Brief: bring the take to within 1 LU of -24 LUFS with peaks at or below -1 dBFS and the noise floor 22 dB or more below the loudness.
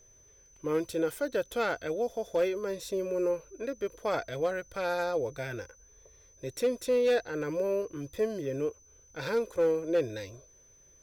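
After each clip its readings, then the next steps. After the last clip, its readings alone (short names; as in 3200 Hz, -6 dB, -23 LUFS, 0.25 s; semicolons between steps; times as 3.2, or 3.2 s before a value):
clipped 0.4%; flat tops at -20.5 dBFS; steady tone 6100 Hz; tone level -58 dBFS; loudness -31.5 LUFS; peak -20.5 dBFS; loudness target -24.0 LUFS
-> clip repair -20.5 dBFS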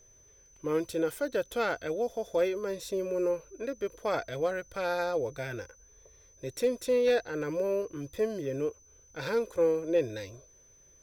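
clipped 0.0%; steady tone 6100 Hz; tone level -58 dBFS
-> notch 6100 Hz, Q 30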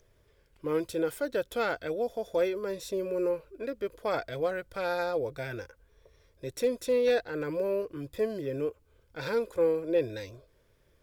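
steady tone none; loudness -31.5 LUFS; peak -16.5 dBFS; loudness target -24.0 LUFS
-> gain +7.5 dB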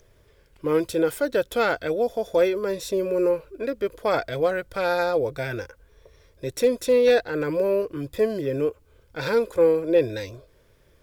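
loudness -24.0 LUFS; peak -9.0 dBFS; noise floor -58 dBFS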